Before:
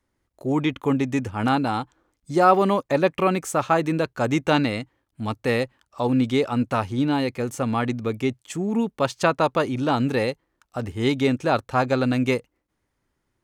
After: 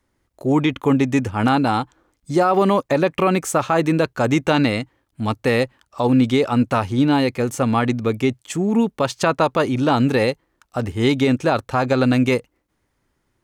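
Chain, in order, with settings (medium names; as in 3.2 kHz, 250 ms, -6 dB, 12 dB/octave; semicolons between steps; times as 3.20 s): loudness maximiser +12 dB; trim -6.5 dB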